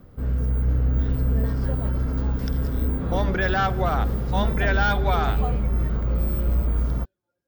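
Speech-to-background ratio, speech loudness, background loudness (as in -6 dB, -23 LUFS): -1.0 dB, -26.0 LUFS, -25.0 LUFS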